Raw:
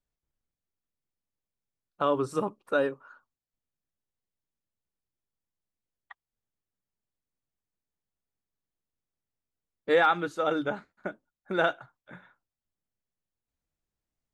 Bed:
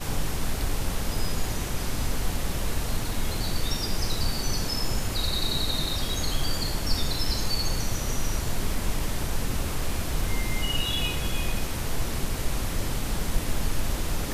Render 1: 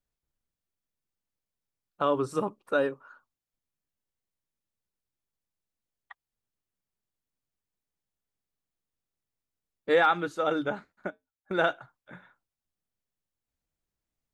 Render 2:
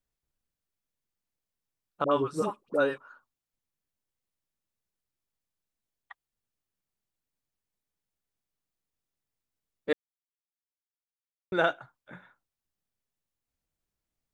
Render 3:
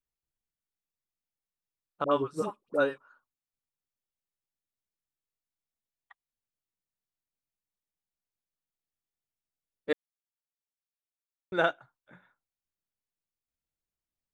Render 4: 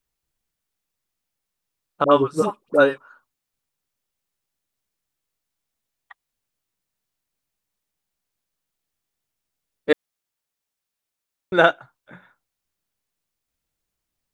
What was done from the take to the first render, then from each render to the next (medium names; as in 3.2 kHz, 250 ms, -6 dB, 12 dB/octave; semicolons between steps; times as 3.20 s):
11.10–11.51 s: feedback comb 89 Hz, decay 0.16 s, harmonics odd, mix 90%
2.04–2.98 s: phase dispersion highs, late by 74 ms, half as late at 830 Hz; 9.93–11.52 s: mute
upward expansion 1.5:1, over -38 dBFS
trim +11 dB